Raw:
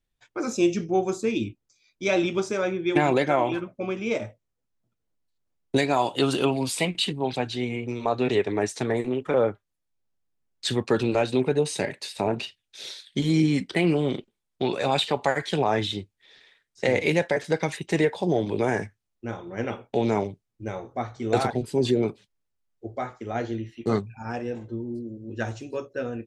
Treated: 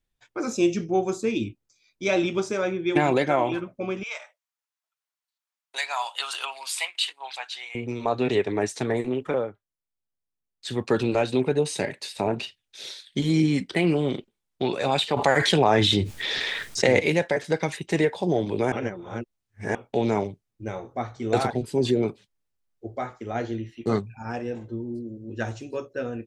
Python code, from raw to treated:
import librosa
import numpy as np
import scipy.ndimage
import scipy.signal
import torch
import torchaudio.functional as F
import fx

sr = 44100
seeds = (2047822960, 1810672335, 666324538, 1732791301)

y = fx.highpass(x, sr, hz=910.0, slope=24, at=(4.03, 7.75))
y = fx.env_flatten(y, sr, amount_pct=70, at=(15.16, 16.99), fade=0.02)
y = fx.edit(y, sr, fx.fade_down_up(start_s=9.27, length_s=1.57, db=-10.0, fade_s=0.2),
    fx.reverse_span(start_s=18.72, length_s=1.03), tone=tone)